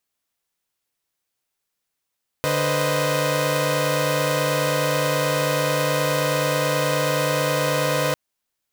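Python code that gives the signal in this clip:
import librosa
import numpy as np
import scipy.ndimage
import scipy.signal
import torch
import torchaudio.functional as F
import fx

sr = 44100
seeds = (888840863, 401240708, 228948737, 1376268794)

y = fx.chord(sr, length_s=5.7, notes=(50, 71, 72, 75), wave='saw', level_db=-22.5)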